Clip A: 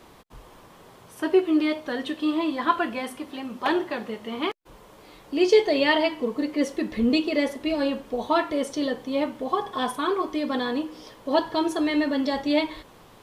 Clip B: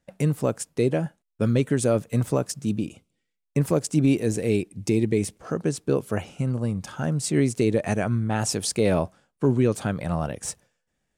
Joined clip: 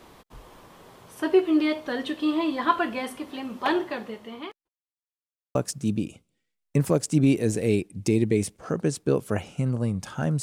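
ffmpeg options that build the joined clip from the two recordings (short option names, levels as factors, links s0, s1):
-filter_complex "[0:a]apad=whole_dur=10.42,atrim=end=10.42,asplit=2[s0][s1];[s0]atrim=end=4.69,asetpts=PTS-STARTPTS,afade=t=out:st=3.46:d=1.23:c=qsin[s2];[s1]atrim=start=4.69:end=5.55,asetpts=PTS-STARTPTS,volume=0[s3];[1:a]atrim=start=2.36:end=7.23,asetpts=PTS-STARTPTS,afade=t=in:d=0.004:c=hsin[s4];[s2][s3][s4]concat=n=3:v=0:a=1"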